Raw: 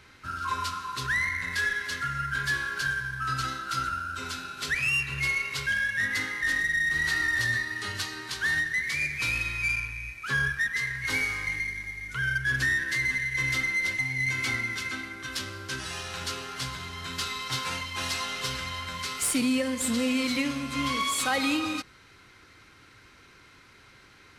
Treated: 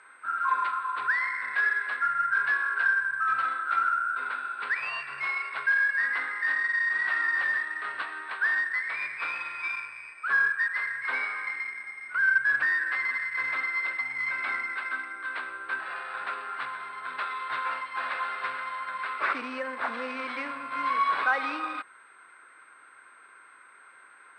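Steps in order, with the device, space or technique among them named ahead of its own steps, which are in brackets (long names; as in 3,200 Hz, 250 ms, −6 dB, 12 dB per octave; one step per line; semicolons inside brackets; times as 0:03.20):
toy sound module (linearly interpolated sample-rate reduction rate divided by 6×; switching amplifier with a slow clock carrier 8,400 Hz; loudspeaker in its box 620–4,400 Hz, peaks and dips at 1,100 Hz +6 dB, 1,500 Hz +8 dB, 3,100 Hz −9 dB)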